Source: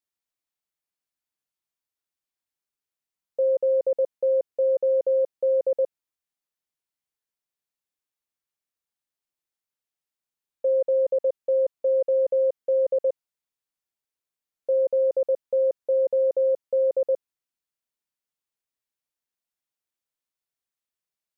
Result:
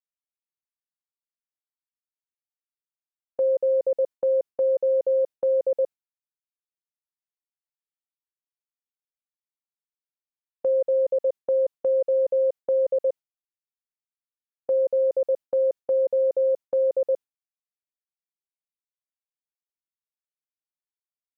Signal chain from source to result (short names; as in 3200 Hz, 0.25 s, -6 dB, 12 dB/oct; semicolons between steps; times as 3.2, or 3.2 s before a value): gate with hold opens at -20 dBFS